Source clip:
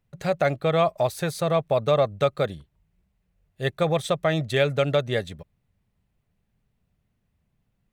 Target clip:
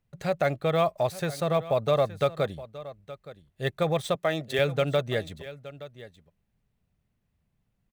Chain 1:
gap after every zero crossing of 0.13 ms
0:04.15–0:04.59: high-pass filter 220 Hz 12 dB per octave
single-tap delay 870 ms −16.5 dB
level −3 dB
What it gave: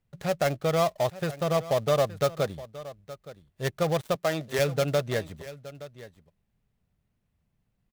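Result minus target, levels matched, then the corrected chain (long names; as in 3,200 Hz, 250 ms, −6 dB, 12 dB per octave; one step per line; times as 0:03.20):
gap after every zero crossing: distortion +18 dB
gap after every zero crossing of 0.025 ms
0:04.15–0:04.59: high-pass filter 220 Hz 12 dB per octave
single-tap delay 870 ms −16.5 dB
level −3 dB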